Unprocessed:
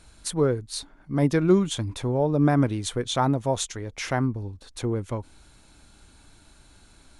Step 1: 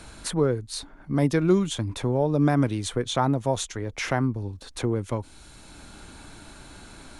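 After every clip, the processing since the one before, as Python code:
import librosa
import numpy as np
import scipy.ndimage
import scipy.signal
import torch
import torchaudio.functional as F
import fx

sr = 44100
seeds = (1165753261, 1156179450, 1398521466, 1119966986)

y = fx.band_squash(x, sr, depth_pct=40)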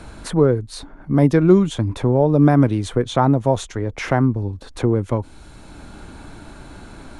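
y = fx.high_shelf(x, sr, hz=2100.0, db=-11.0)
y = y * librosa.db_to_amplitude(8.0)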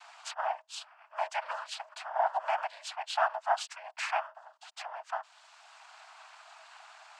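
y = fx.noise_vocoder(x, sr, seeds[0], bands=8)
y = scipy.signal.sosfilt(scipy.signal.cheby1(8, 1.0, 640.0, 'highpass', fs=sr, output='sos'), y)
y = y * librosa.db_to_amplitude(-6.0)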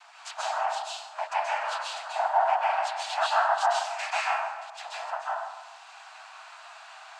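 y = fx.echo_feedback(x, sr, ms=296, feedback_pct=40, wet_db=-19.0)
y = fx.rev_plate(y, sr, seeds[1], rt60_s=0.96, hf_ratio=0.65, predelay_ms=120, drr_db=-5.5)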